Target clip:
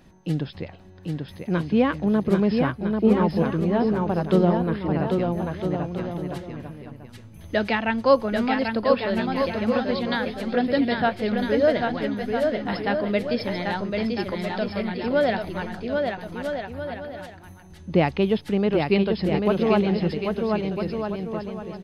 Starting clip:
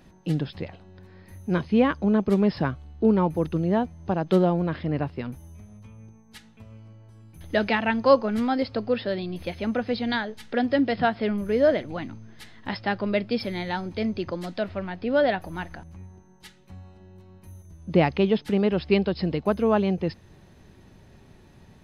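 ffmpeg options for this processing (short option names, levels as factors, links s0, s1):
-af "aecho=1:1:790|1304|1637|1854|1995:0.631|0.398|0.251|0.158|0.1"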